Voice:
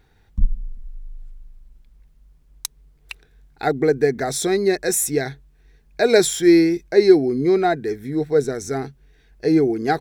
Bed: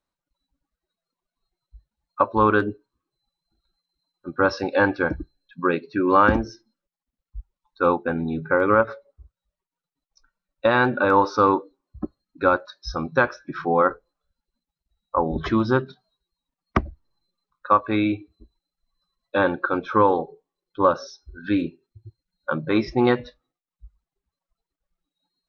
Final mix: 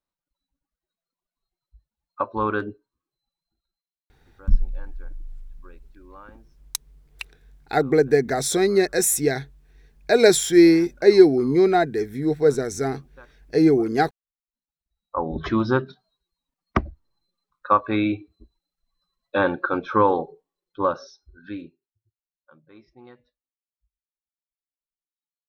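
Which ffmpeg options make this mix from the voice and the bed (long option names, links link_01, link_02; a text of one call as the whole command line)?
ffmpeg -i stem1.wav -i stem2.wav -filter_complex "[0:a]adelay=4100,volume=0dB[link_01];[1:a]volume=23dB,afade=type=out:start_time=3.41:duration=0.55:silence=0.0668344,afade=type=in:start_time=14.43:duration=1.2:silence=0.0354813,afade=type=out:start_time=20.29:duration=1.64:silence=0.0375837[link_02];[link_01][link_02]amix=inputs=2:normalize=0" out.wav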